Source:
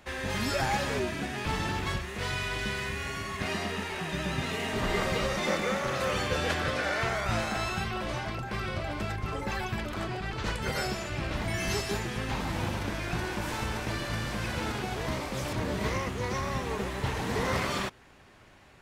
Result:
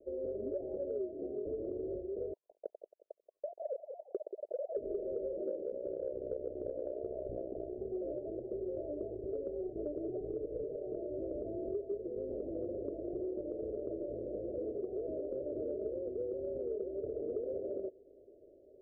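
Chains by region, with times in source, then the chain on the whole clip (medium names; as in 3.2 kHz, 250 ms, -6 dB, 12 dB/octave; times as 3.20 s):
2.33–4.77 s: formants replaced by sine waves + feedback delay 180 ms, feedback 24%, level -11 dB
5.63–7.80 s: peaking EQ 67 Hz +6 dB 1.9 oct + AM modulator 63 Hz, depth 90%
9.67–10.98 s: comb 6.7 ms, depth 52% + compressor with a negative ratio -33 dBFS, ratio -0.5 + bass shelf 210 Hz +4.5 dB
whole clip: steep low-pass 630 Hz 96 dB/octave; resonant low shelf 260 Hz -14 dB, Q 3; compression 6:1, threshold -34 dBFS; trim -1 dB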